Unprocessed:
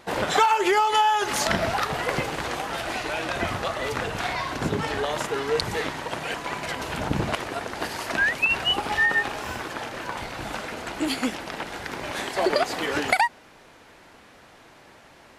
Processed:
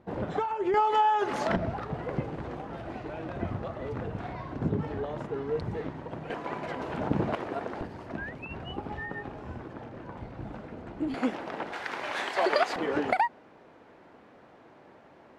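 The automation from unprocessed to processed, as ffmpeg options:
-af "asetnsamples=n=441:p=0,asendcmd='0.74 bandpass f 360;1.56 bandpass f 130;6.3 bandpass f 330;7.81 bandpass f 110;11.14 bandpass f 470;11.73 bandpass f 1300;12.76 bandpass f 350',bandpass=f=120:t=q:w=0.51:csg=0"

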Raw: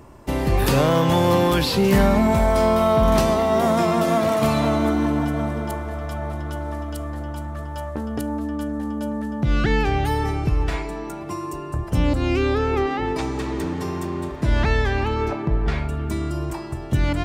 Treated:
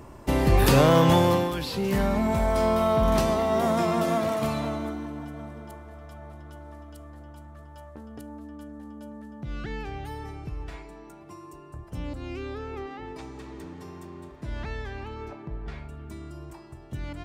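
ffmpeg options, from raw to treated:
-af "volume=2.11,afade=t=out:st=1.1:d=0.42:silence=0.266073,afade=t=in:st=1.52:d=1.16:silence=0.473151,afade=t=out:st=4.05:d=1.01:silence=0.316228"

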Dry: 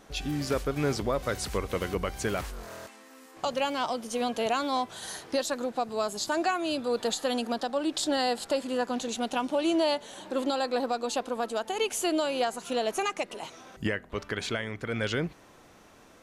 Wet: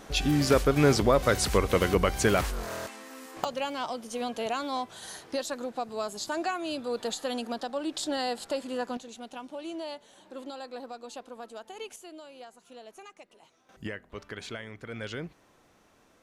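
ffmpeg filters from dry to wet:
-af "asetnsamples=n=441:p=0,asendcmd='3.44 volume volume -3.5dB;8.97 volume volume -12dB;11.96 volume volume -19dB;13.69 volume volume -7.5dB',volume=2.11"

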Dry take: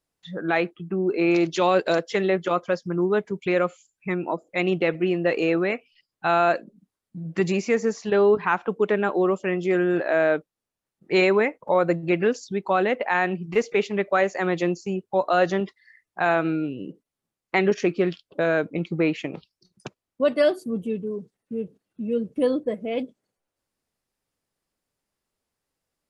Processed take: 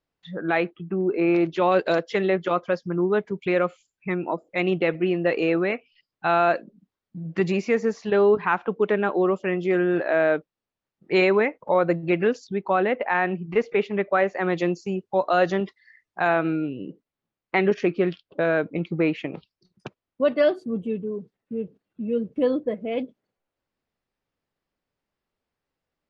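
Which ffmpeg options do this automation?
-af "asetnsamples=n=441:p=0,asendcmd='1.01 lowpass f 2300;1.72 lowpass f 4400;12.47 lowpass f 2800;14.5 lowpass f 5800;16.28 lowpass f 3600',lowpass=3800"

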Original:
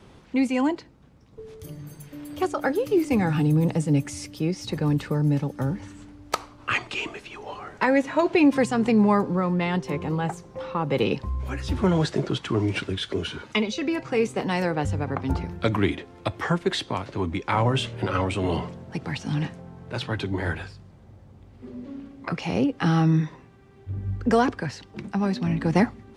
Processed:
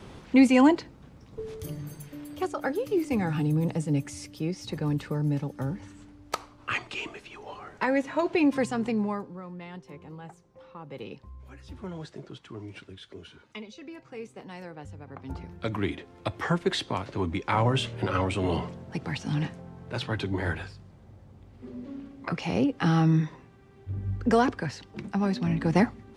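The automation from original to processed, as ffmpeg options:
-af "volume=9.44,afade=t=out:st=1.41:d=0.97:silence=0.334965,afade=t=out:st=8.69:d=0.62:silence=0.251189,afade=t=in:st=15.05:d=0.55:silence=0.375837,afade=t=in:st=15.6:d=0.98:silence=0.473151"

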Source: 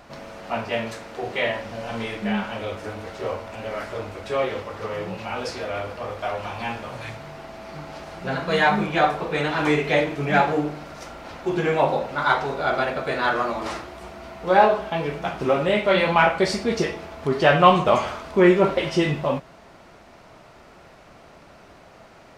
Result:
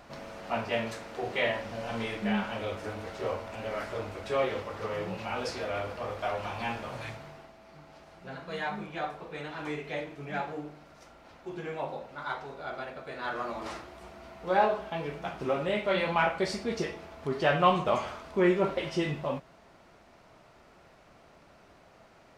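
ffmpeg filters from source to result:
-af "volume=1.26,afade=t=out:st=7.01:d=0.54:silence=0.281838,afade=t=in:st=13.13:d=0.45:silence=0.473151"

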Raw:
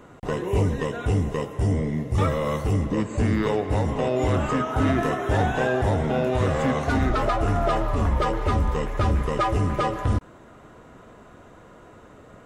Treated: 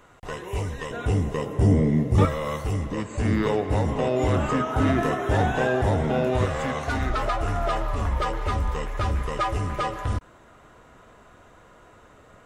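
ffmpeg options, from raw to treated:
-af "asetnsamples=n=441:p=0,asendcmd='0.91 equalizer g -1;1.46 equalizer g 6;2.25 equalizer g -6;3.25 equalizer g 0;6.45 equalizer g -7.5',equalizer=f=230:t=o:w=2.9:g=-12"

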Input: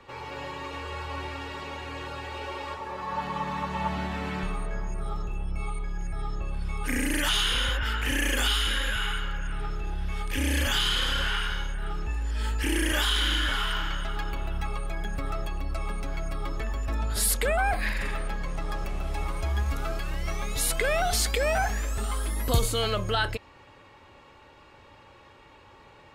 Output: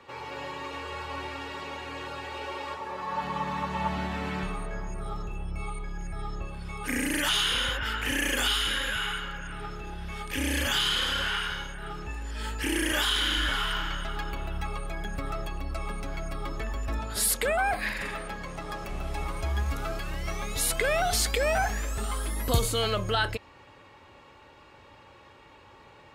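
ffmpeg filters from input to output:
-af "asetnsamples=n=441:p=0,asendcmd='3.24 highpass f 47;6.47 highpass f 110;13.37 highpass f 43;16.99 highpass f 140;18.89 highpass f 45',highpass=f=140:p=1"

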